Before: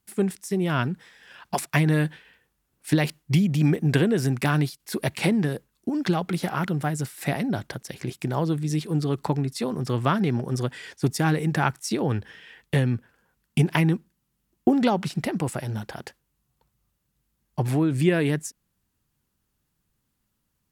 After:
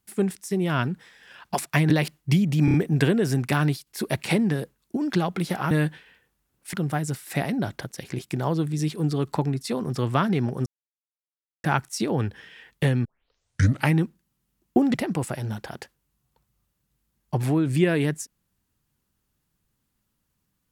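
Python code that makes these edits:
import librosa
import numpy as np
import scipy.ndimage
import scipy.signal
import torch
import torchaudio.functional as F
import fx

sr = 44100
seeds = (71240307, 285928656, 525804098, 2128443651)

y = fx.edit(x, sr, fx.move(start_s=1.9, length_s=1.02, to_s=6.64),
    fx.stutter(start_s=3.67, slice_s=0.03, count=4),
    fx.silence(start_s=10.57, length_s=0.98),
    fx.tape_start(start_s=12.96, length_s=0.89),
    fx.cut(start_s=14.85, length_s=0.34), tone=tone)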